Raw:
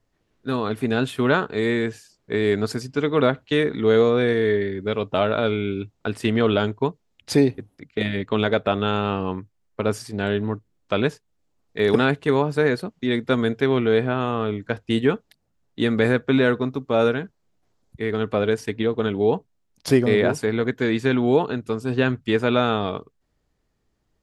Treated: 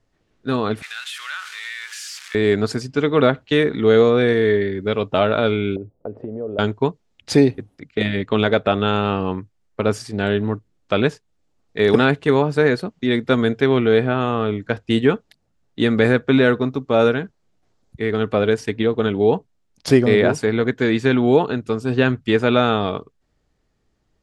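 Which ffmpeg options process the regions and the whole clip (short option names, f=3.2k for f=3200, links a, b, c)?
-filter_complex "[0:a]asettb=1/sr,asplit=3[a][b][c];[a]atrim=end=0.824[d];[b]atrim=start=0.82:end=2.35,asetpts=PTS-STARTPTS,afade=t=in:d=0.004:c=qsin,afade=t=out:st=1.526:d=0.004:c=qsin,aeval=exprs='val(0)+0.5*0.0376*sgn(val(0))':c=same,highpass=f=1.5k:w=0.5412,highpass=f=1.5k:w=1.3066,acompressor=threshold=-32dB:ratio=2.5:attack=3.2:release=140:knee=1:detection=peak[e];[c]atrim=start=2.346[f];[d][e]acrossfade=d=0.004:c1=hsin:c2=qsin[g];[g][f]acrossfade=d=0.004:c1=qsin:c2=hsin,asettb=1/sr,asplit=3[h][i][j];[h]atrim=end=5.764[k];[i]atrim=start=5.76:end=6.59,asetpts=PTS-STARTPTS,afade=t=in:d=0.004:c=qsin,afade=t=out:st=0.826:d=0.004:c=qsin,acompressor=threshold=-31dB:ratio=16:attack=3.2:release=140:knee=1:detection=peak,lowpass=f=540:t=q:w=3.3[l];[j]atrim=start=6.586[m];[k][l]acrossfade=d=0.004:c1=hsin:c2=qsin[n];[n][m]acrossfade=d=0.004:c1=qsin:c2=hsin,lowpass=8.9k,bandreject=f=1k:w=23,volume=3.5dB"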